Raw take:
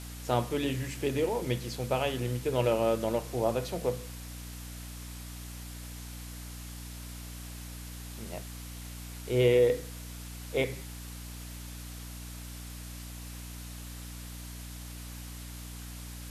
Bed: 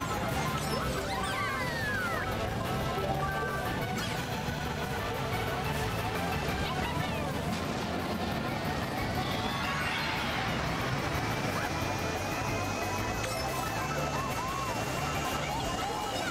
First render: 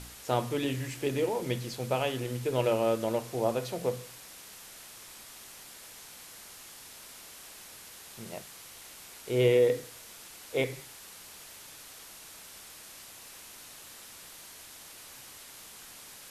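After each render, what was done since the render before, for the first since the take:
hum removal 60 Hz, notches 5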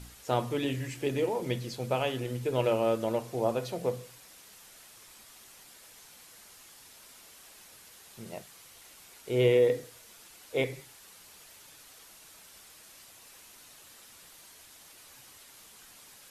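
broadband denoise 6 dB, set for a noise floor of −49 dBFS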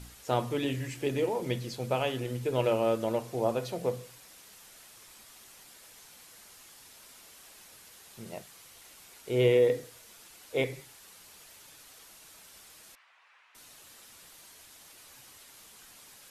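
0:12.95–0:13.55: flat-topped band-pass 1,500 Hz, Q 0.93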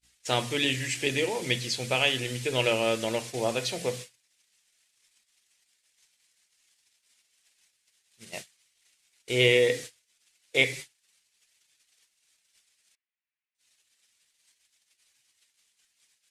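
flat-topped bell 4,100 Hz +13 dB 2.8 octaves
noise gate −38 dBFS, range −45 dB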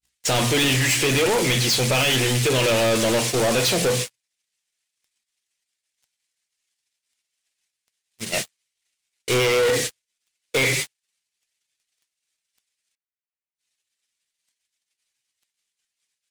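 brickwall limiter −16 dBFS, peak gain reduction 10 dB
leveller curve on the samples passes 5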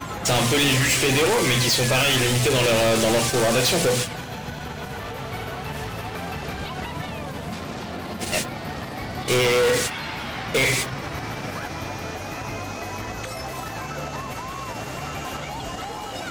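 mix in bed +1 dB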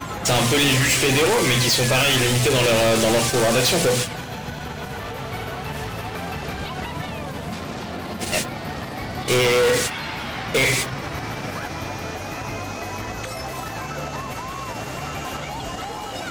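level +1.5 dB

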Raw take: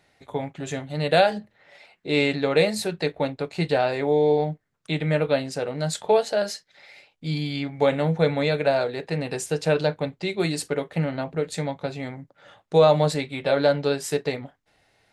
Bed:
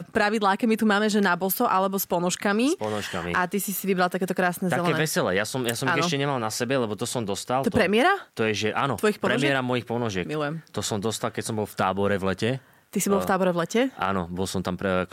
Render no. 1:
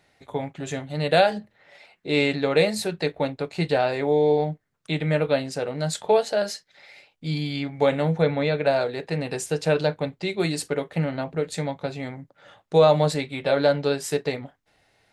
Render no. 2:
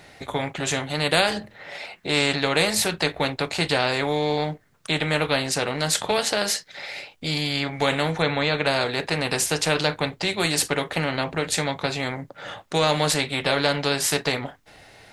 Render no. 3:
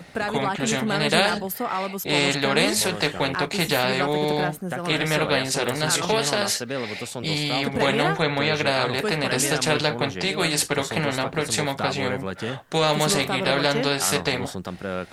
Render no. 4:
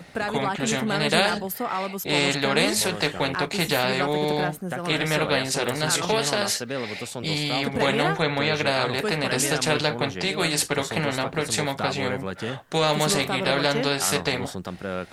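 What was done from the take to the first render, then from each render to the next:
0:08.22–0:08.66: high-frequency loss of the air 120 metres
every bin compressed towards the loudest bin 2 to 1
mix in bed −5 dB
level −1 dB

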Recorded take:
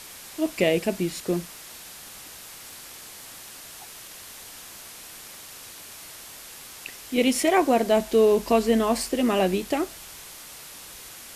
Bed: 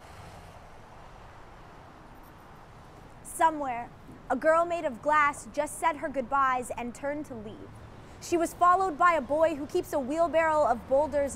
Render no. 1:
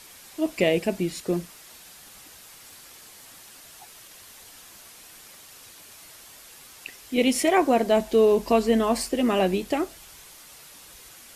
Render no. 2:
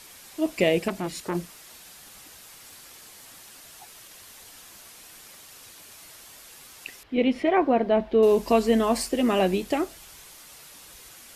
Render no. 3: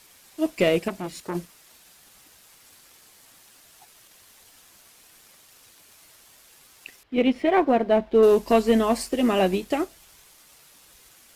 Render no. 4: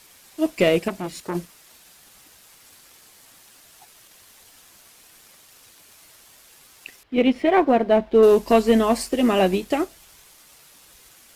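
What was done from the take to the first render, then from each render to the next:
broadband denoise 6 dB, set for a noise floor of −43 dBFS
0:00.88–0:01.35: saturating transformer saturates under 1,300 Hz; 0:07.03–0:08.23: high-frequency loss of the air 360 metres
leveller curve on the samples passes 1; expander for the loud parts 1.5 to 1, over −27 dBFS
level +2.5 dB

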